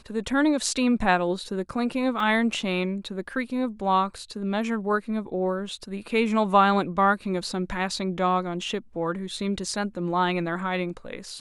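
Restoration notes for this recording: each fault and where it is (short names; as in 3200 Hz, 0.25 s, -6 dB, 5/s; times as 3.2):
2.2 gap 2.4 ms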